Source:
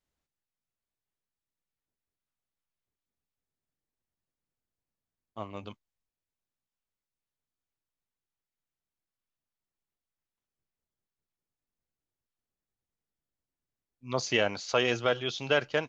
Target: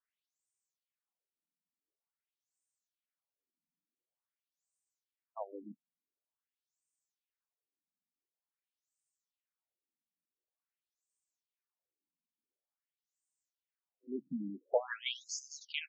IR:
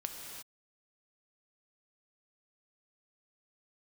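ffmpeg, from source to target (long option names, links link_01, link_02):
-af "aexciter=amount=5.4:drive=6.2:freq=6800,afftfilt=real='re*between(b*sr/1024,210*pow(6700/210,0.5+0.5*sin(2*PI*0.47*pts/sr))/1.41,210*pow(6700/210,0.5+0.5*sin(2*PI*0.47*pts/sr))*1.41)':imag='im*between(b*sr/1024,210*pow(6700/210,0.5+0.5*sin(2*PI*0.47*pts/sr))/1.41,210*pow(6700/210,0.5+0.5*sin(2*PI*0.47*pts/sr))*1.41)':win_size=1024:overlap=0.75"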